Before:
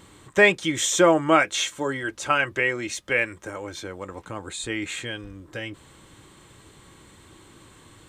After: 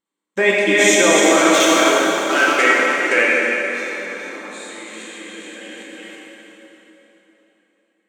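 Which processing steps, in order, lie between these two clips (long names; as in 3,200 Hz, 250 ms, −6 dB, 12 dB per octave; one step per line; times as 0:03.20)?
feedback delay that plays each chunk backwards 201 ms, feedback 59%, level −3 dB
noise gate −40 dBFS, range −34 dB
output level in coarse steps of 23 dB
0:01.21–0:02.59: hard clipping −20.5 dBFS, distortion −15 dB
linear-phase brick-wall high-pass 180 Hz
dense smooth reverb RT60 3.8 s, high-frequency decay 0.8×, DRR −5.5 dB
level +5.5 dB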